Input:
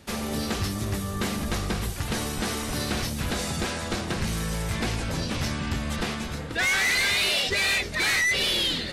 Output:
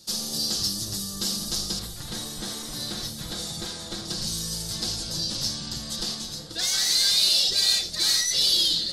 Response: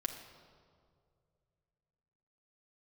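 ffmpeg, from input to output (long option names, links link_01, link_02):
-filter_complex "[0:a]asetnsamples=nb_out_samples=441:pad=0,asendcmd='1.79 highshelf g 6.5;4.05 highshelf g 12',highshelf=frequency=3200:width_type=q:width=3:gain=13.5[link_01];[1:a]atrim=start_sample=2205,atrim=end_sample=3969[link_02];[link_01][link_02]afir=irnorm=-1:irlink=0,volume=-8.5dB"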